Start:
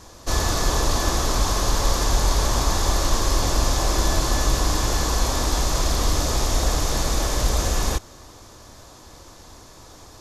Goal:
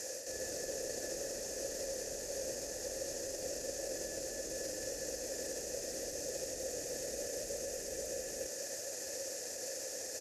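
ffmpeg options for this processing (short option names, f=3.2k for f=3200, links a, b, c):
-filter_complex "[0:a]aexciter=amount=14.2:drive=7.6:freq=5.4k,acrossover=split=450[a][b];[b]acompressor=threshold=-16dB:ratio=3[c];[a][c]amix=inputs=2:normalize=0,aecho=1:1:484:0.596,areverse,acompressor=threshold=-22dB:ratio=6,areverse,alimiter=limit=-22dB:level=0:latency=1:release=52,asplit=3[d][e][f];[d]bandpass=f=530:t=q:w=8,volume=0dB[g];[e]bandpass=f=1.84k:t=q:w=8,volume=-6dB[h];[f]bandpass=f=2.48k:t=q:w=8,volume=-9dB[i];[g][h][i]amix=inputs=3:normalize=0,volume=15.5dB"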